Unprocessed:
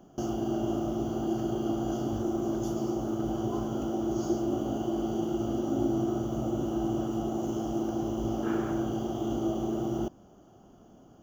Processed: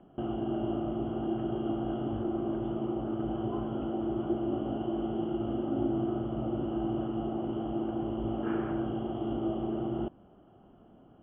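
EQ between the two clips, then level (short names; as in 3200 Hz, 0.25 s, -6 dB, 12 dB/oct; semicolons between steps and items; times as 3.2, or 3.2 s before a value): steep low-pass 3200 Hz 96 dB/oct; -2.0 dB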